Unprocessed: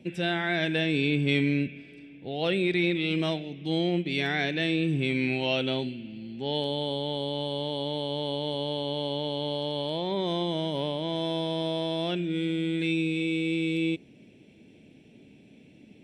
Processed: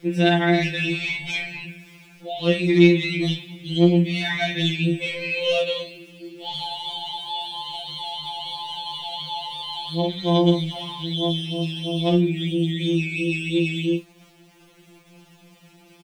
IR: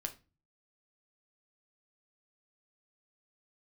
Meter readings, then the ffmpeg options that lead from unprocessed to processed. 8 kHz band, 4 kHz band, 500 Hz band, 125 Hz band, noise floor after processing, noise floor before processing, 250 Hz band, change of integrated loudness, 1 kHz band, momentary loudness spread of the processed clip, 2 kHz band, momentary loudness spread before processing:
no reading, +5.5 dB, +4.5 dB, +7.5 dB, -53 dBFS, -54 dBFS, +6.0 dB, +5.5 dB, +6.0 dB, 12 LU, +4.5 dB, 6 LU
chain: -filter_complex "[0:a]flanger=delay=18.5:depth=4.4:speed=3,asplit=2[s0][s1];[s1]highpass=f=1300:w=0.5412,highpass=f=1300:w=1.3066[s2];[1:a]atrim=start_sample=2205[s3];[s2][s3]afir=irnorm=-1:irlink=0,volume=0.708[s4];[s0][s4]amix=inputs=2:normalize=0,asoftclip=type=tanh:threshold=0.119,asplit=2[s5][s6];[s6]adelay=35,volume=0.316[s7];[s5][s7]amix=inputs=2:normalize=0,aeval=exprs='val(0)*gte(abs(val(0)),0.00188)':c=same,afftfilt=real='re*2.83*eq(mod(b,8),0)':imag='im*2.83*eq(mod(b,8),0)':win_size=2048:overlap=0.75,volume=2.66"

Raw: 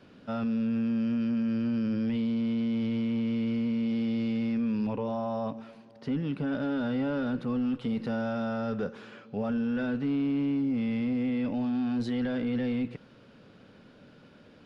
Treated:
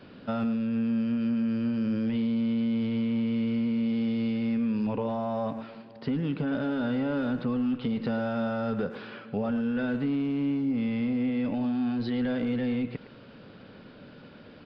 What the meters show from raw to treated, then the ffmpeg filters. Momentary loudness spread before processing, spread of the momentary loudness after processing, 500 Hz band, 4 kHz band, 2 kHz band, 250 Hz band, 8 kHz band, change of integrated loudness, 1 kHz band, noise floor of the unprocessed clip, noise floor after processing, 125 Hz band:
6 LU, 5 LU, +1.5 dB, +1.5 dB, +2.0 dB, +1.0 dB, no reading, +1.0 dB, +2.0 dB, -55 dBFS, -49 dBFS, +1.5 dB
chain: -filter_complex "[0:a]acompressor=threshold=0.0282:ratio=6,aresample=11025,aresample=44100,asplit=2[s0][s1];[s1]adelay=110,highpass=300,lowpass=3400,asoftclip=type=hard:threshold=0.0237,volume=0.282[s2];[s0][s2]amix=inputs=2:normalize=0,volume=1.88"

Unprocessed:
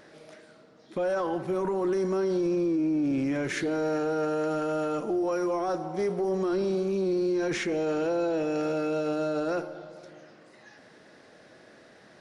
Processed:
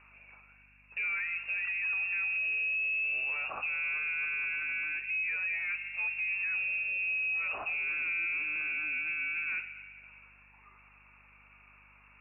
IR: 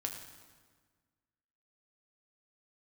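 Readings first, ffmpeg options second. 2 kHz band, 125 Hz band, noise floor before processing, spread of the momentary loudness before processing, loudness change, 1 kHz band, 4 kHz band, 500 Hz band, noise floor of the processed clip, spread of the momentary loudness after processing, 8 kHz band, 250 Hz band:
+11.0 dB, under -25 dB, -55 dBFS, 4 LU, -2.5 dB, -13.5 dB, no reading, -31.0 dB, -60 dBFS, 4 LU, under -35 dB, under -35 dB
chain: -af "lowpass=f=2500:t=q:w=0.5098,lowpass=f=2500:t=q:w=0.6013,lowpass=f=2500:t=q:w=0.9,lowpass=f=2500:t=q:w=2.563,afreqshift=-2900,aeval=exprs='val(0)+0.00112*(sin(2*PI*50*n/s)+sin(2*PI*2*50*n/s)/2+sin(2*PI*3*50*n/s)/3+sin(2*PI*4*50*n/s)/4+sin(2*PI*5*50*n/s)/5)':c=same,volume=0.501"

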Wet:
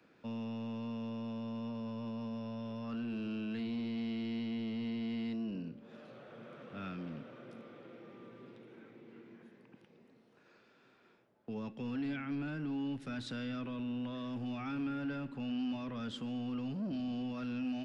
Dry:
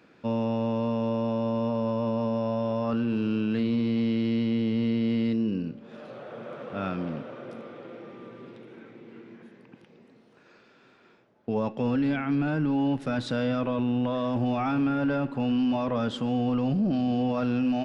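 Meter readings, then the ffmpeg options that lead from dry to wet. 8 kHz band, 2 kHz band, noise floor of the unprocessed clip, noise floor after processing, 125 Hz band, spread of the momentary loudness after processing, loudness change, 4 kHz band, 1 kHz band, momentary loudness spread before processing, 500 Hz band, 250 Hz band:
no reading, -10.0 dB, -58 dBFS, -66 dBFS, -13.5 dB, 16 LU, -12.5 dB, -8.0 dB, -15.5 dB, 16 LU, -17.5 dB, -11.5 dB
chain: -filter_complex "[0:a]acrossover=split=240|330|1300[s0][s1][s2][s3];[s0]asoftclip=type=tanh:threshold=0.0178[s4];[s2]acompressor=threshold=0.00398:ratio=6[s5];[s4][s1][s5][s3]amix=inputs=4:normalize=0,volume=0.398"

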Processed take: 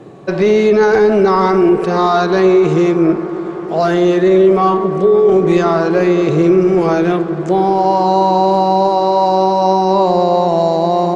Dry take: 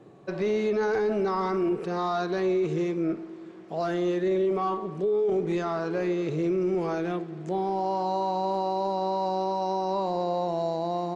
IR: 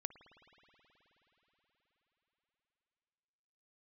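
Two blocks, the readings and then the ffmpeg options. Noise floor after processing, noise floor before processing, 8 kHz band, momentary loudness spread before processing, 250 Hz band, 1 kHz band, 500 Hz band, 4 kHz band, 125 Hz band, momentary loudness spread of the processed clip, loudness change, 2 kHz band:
-22 dBFS, -42 dBFS, no reading, 5 LU, +15.5 dB, +15.5 dB, +15.5 dB, +15.0 dB, +15.5 dB, 5 LU, +15.5 dB, +15.0 dB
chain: -filter_complex "[0:a]asplit=2[s0][s1];[1:a]atrim=start_sample=2205,asetrate=23373,aresample=44100[s2];[s1][s2]afir=irnorm=-1:irlink=0,volume=3.76[s3];[s0][s3]amix=inputs=2:normalize=0,volume=1.19"

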